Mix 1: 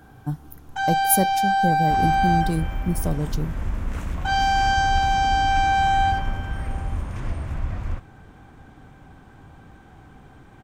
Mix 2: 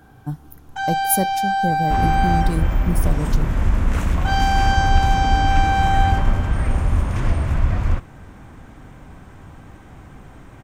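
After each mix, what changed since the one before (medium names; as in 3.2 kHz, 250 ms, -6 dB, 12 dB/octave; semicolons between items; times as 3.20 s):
second sound +9.0 dB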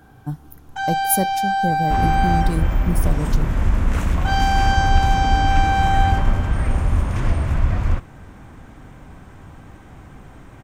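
no change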